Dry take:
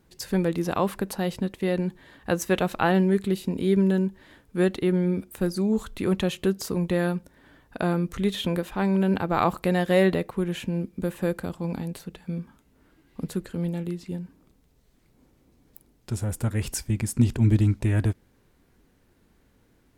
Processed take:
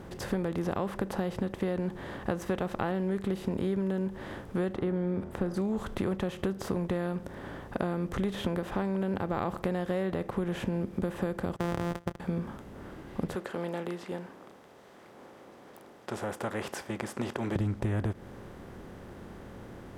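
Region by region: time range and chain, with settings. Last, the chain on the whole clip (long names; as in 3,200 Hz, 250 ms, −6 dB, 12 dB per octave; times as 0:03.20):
0:04.74–0:05.54: low-pass filter 1,600 Hz 6 dB per octave + hum removal 82.07 Hz, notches 24
0:11.56–0:12.20: samples sorted by size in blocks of 256 samples + noise gate −41 dBFS, range −29 dB
0:13.35–0:17.56: high-pass filter 590 Hz + high-shelf EQ 6,900 Hz −7 dB
whole clip: compressor on every frequency bin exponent 0.6; high-shelf EQ 2,400 Hz −11 dB; downward compressor, threshold −25 dBFS; level −2 dB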